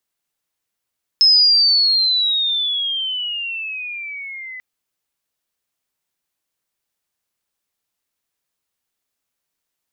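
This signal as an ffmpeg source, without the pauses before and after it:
-f lavfi -i "aevalsrc='pow(10,(-8-22*t/3.39)/20)*sin(2*PI*5200*3.39/log(2000/5200)*(exp(log(2000/5200)*t/3.39)-1))':d=3.39:s=44100"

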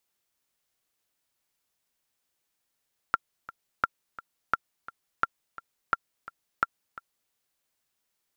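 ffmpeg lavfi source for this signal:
-f lavfi -i "aevalsrc='pow(10,(-9-18*gte(mod(t,2*60/172),60/172))/20)*sin(2*PI*1370*mod(t,60/172))*exp(-6.91*mod(t,60/172)/0.03)':d=4.18:s=44100"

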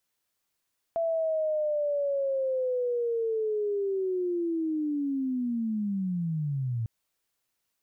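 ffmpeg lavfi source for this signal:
-f lavfi -i "aevalsrc='pow(10,(-24.5-2.5*t/5.9)/20)*sin(2*PI*(670*t-560*t*t/(2*5.9)))':d=5.9:s=44100"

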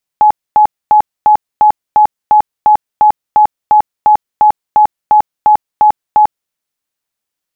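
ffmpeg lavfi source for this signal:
-f lavfi -i "aevalsrc='0.708*sin(2*PI*847*mod(t,0.35))*lt(mod(t,0.35),81/847)':d=6.3:s=44100"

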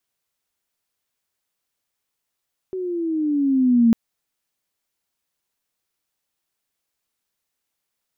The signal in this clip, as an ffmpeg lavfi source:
-f lavfi -i "aevalsrc='pow(10,(-10.5+14*(t/1.2-1))/20)*sin(2*PI*379*1.2/(-9*log(2)/12)*(exp(-9*log(2)/12*t/1.2)-1))':d=1.2:s=44100"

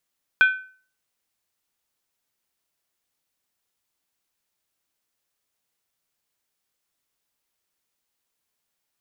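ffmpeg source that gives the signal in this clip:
-f lavfi -i "aevalsrc='0.335*pow(10,-3*t/0.43)*sin(2*PI*1520*t)+0.112*pow(10,-3*t/0.341)*sin(2*PI*2422.9*t)+0.0376*pow(10,-3*t/0.294)*sin(2*PI*3246.7*t)+0.0126*pow(10,-3*t/0.284)*sin(2*PI*3489.9*t)+0.00422*pow(10,-3*t/0.264)*sin(2*PI*4032.6*t)':d=0.63:s=44100"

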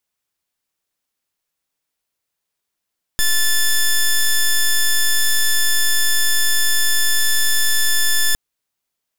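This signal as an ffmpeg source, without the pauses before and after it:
-f lavfi -i "aevalsrc='0.188*(2*lt(mod(1750*t,1),0.08)-1)':d=5.16:s=44100"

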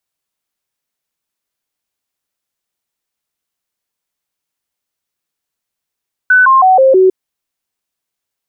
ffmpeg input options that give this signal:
-f lavfi -i "aevalsrc='0.631*clip(min(mod(t,0.16),0.16-mod(t,0.16))/0.005,0,1)*sin(2*PI*1500*pow(2,-floor(t/0.16)/2)*mod(t,0.16))':d=0.8:s=44100"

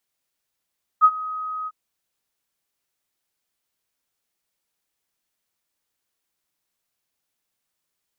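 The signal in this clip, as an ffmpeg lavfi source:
-f lavfi -i "aevalsrc='0.422*sin(2*PI*1260*t)':d=0.701:s=44100,afade=t=in:d=0.035,afade=t=out:st=0.035:d=0.055:silence=0.112,afade=t=out:st=0.66:d=0.041"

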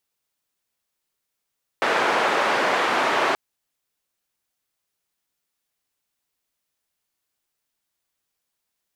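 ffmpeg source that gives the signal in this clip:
-f lavfi -i "anoisesrc=c=white:d=1.53:r=44100:seed=1,highpass=f=400,lowpass=f=1400,volume=-3.2dB"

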